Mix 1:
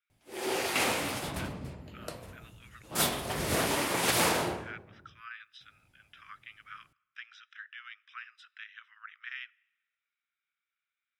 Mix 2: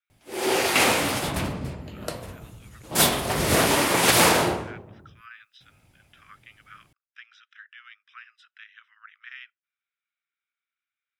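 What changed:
background +9.5 dB
reverb: off

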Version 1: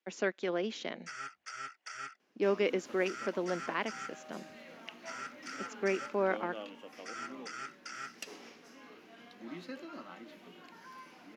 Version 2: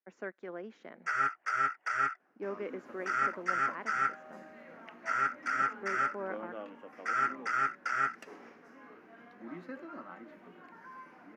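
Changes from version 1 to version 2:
speech −9.5 dB
first sound +11.5 dB
master: add high shelf with overshoot 2,400 Hz −12.5 dB, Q 1.5

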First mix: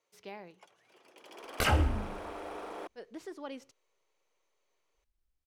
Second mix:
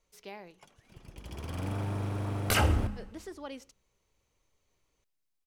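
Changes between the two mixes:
first sound: remove high-pass filter 380 Hz 24 dB per octave
second sound: entry +0.90 s
master: add high-shelf EQ 5,000 Hz +7.5 dB

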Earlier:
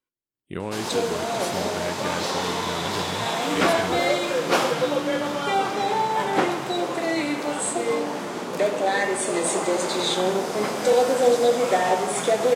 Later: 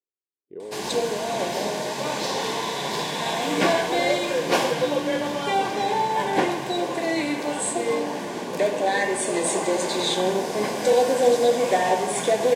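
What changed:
speech: add resonant band-pass 430 Hz, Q 4.9
master: add Butterworth band-reject 1,300 Hz, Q 4.7

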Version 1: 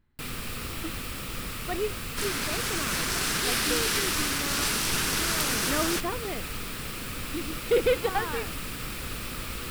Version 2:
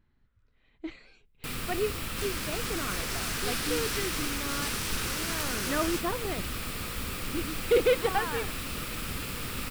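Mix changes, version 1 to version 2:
first sound: entry +1.25 s
second sound −7.0 dB

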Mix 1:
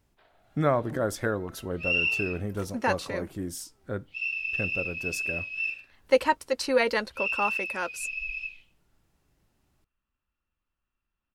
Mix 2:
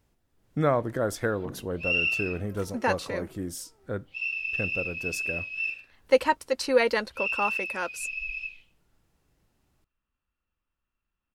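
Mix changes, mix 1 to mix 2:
first sound: entry +0.55 s
master: remove notch filter 480 Hz, Q 16

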